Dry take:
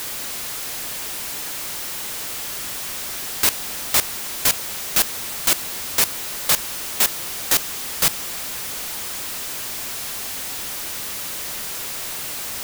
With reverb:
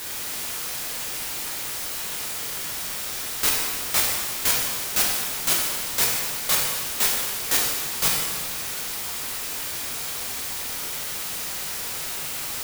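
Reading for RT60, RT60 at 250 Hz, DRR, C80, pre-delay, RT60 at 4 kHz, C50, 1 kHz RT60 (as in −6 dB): 1.5 s, 1.5 s, −3.5 dB, 2.5 dB, 4 ms, 1.4 s, 1.0 dB, 1.5 s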